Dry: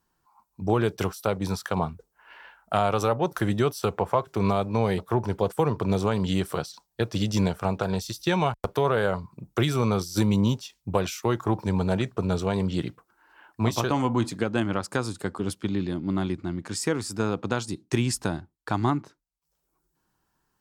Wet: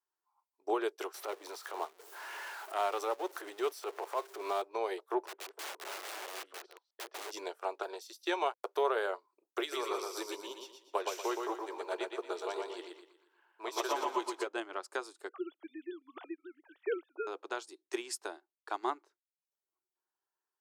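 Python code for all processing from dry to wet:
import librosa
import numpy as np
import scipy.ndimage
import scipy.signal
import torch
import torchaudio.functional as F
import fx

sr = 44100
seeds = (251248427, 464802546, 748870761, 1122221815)

y = fx.chain(x, sr, fx.zero_step(step_db=-32.0),
    fx.transient(attack_db=-11, sustain_db=-3),
    fx.band_squash(depth_pct=40), at=(1.14, 4.62))
y = fx.chain(y, sr, fx.reverse_delay(ms=126, wet_db=-12),
    fx.lowpass(hz=2600.0, slope=12),
    fx.overflow_wrap(gain_db=26.0), at=(5.27, 7.31))
y = fx.chain(y, sr, fx.highpass(hz=300.0, slope=12),
    fx.notch(hz=750.0, q=18.0),
    fx.echo_feedback(ms=119, feedback_pct=48, wet_db=-3.0), at=(9.6, 14.47))
y = fx.chain(y, sr, fx.sine_speech(),
    fx.brickwall_highpass(low_hz=250.0), at=(15.29, 17.27))
y = scipy.signal.sosfilt(scipy.signal.ellip(4, 1.0, 50, 360.0, 'highpass', fs=sr, output='sos'), y)
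y = fx.notch(y, sr, hz=500.0, q=13.0)
y = fx.upward_expand(y, sr, threshold_db=-47.0, expansion=1.5)
y = F.gain(torch.from_numpy(y), -5.0).numpy()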